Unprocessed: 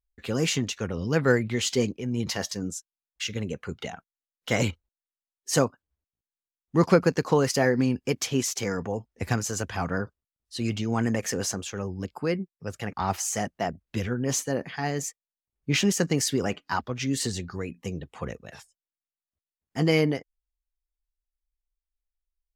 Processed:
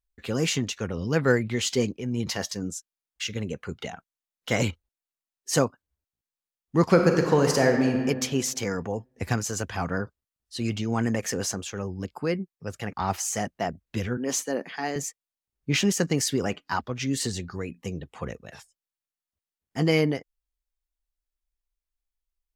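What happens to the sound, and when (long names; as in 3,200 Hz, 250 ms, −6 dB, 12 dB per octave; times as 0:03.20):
0:06.83–0:07.98: thrown reverb, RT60 1.6 s, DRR 3 dB
0:14.17–0:14.96: high-pass filter 210 Hz 24 dB per octave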